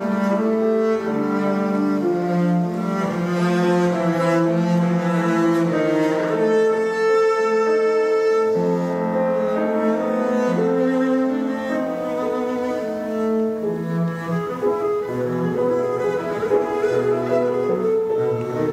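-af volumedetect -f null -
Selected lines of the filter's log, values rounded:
mean_volume: -19.6 dB
max_volume: -6.9 dB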